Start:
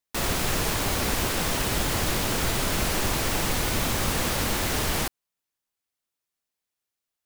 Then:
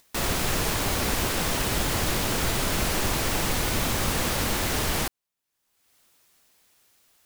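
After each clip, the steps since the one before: upward compressor, threshold -43 dBFS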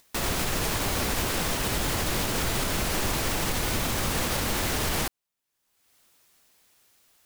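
peak limiter -17 dBFS, peak gain reduction 4 dB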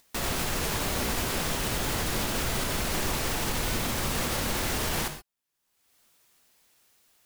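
gated-style reverb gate 150 ms flat, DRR 7 dB; trim -2.5 dB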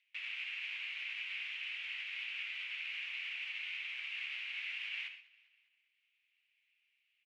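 flange 0.33 Hz, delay 7.4 ms, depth 3.4 ms, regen -63%; Butterworth band-pass 2.5 kHz, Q 3.2; feedback delay 200 ms, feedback 55%, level -22.5 dB; trim +4 dB

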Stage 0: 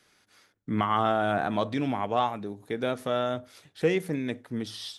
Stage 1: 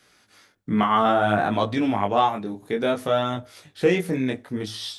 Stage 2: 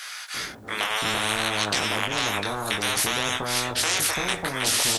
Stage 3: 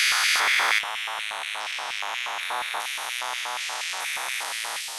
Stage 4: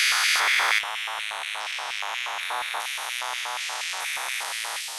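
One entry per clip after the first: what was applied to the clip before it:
chorus 0.6 Hz, delay 17 ms, depth 6.3 ms; trim +8.5 dB
bands offset in time highs, lows 340 ms, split 890 Hz; spectrum-flattening compressor 10:1
spectrogram pixelated in time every 400 ms; compressor with a negative ratio -37 dBFS, ratio -1; LFO high-pass square 4.2 Hz 850–2200 Hz; trim +6 dB
peaking EQ 230 Hz -7 dB 1.1 oct

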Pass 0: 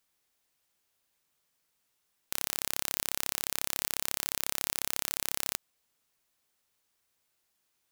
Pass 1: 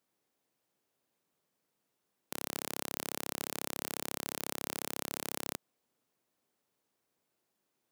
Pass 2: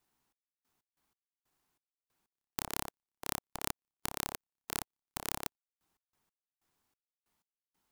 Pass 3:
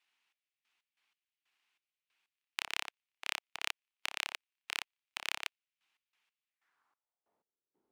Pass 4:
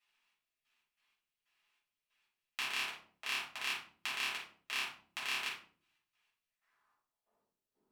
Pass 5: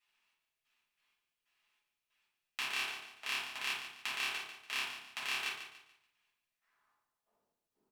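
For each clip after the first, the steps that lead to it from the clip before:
Bessel high-pass 240 Hz, order 2; tilt shelf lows +9 dB, about 770 Hz; trim +1.5 dB
trance gate "xx..x.x..xx..x.." 93 bpm -60 dB; ring modulator 560 Hz; trim +4.5 dB
band-pass sweep 2.6 kHz -> 380 Hz, 6.43–7.55 s; trim +11 dB
simulated room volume 410 m³, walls furnished, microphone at 6.5 m; trim -7.5 dB
feedback delay 144 ms, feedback 34%, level -10 dB

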